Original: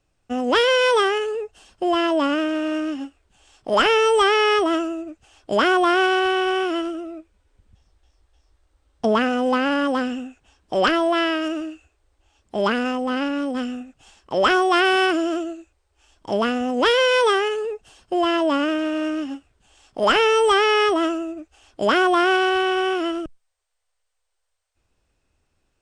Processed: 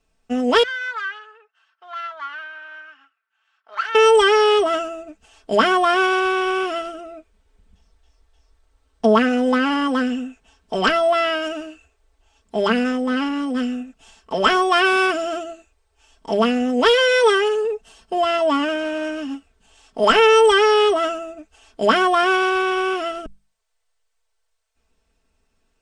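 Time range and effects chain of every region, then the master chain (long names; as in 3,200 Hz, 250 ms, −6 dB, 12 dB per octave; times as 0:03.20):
0:00.63–0:03.95: phase distortion by the signal itself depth 0.12 ms + bad sample-rate conversion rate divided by 2×, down none, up hold + four-pole ladder band-pass 1,600 Hz, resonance 60%
whole clip: mains-hum notches 50/100/150/200 Hz; comb filter 4.5 ms, depth 77%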